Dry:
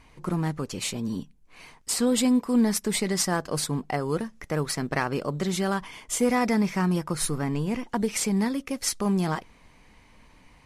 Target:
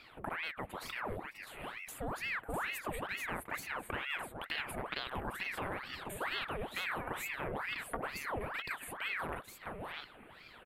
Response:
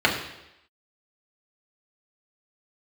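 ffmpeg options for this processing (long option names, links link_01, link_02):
-af "lowshelf=frequency=330:gain=-7.5,acompressor=threshold=-41dB:ratio=4,asuperstop=centerf=5500:order=4:qfactor=0.62,aecho=1:1:614|653:0.237|0.531,aeval=exprs='val(0)*sin(2*PI*1300*n/s+1300*0.85/2.2*sin(2*PI*2.2*n/s))':channel_layout=same,volume=5dB"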